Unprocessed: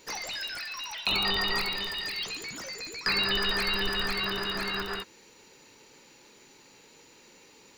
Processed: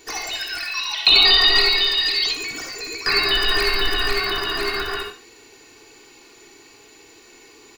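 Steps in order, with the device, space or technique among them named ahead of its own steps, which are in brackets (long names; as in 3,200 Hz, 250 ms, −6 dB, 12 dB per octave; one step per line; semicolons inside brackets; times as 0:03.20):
microphone above a desk (comb filter 2.7 ms, depth 73%; convolution reverb RT60 0.35 s, pre-delay 52 ms, DRR 2.5 dB)
0:00.75–0:02.33: graphic EQ with 15 bands 100 Hz −6 dB, 4,000 Hz +10 dB, 16,000 Hz −12 dB
level +4.5 dB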